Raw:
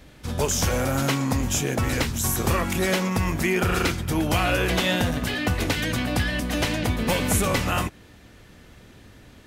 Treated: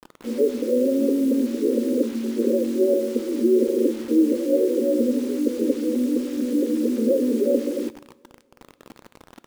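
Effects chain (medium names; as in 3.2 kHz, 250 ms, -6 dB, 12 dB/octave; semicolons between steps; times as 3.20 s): FFT band-pass 220–580 Hz; word length cut 8-bit, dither none; two-slope reverb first 0.72 s, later 3.1 s, from -18 dB, DRR 16 dB; trim +8 dB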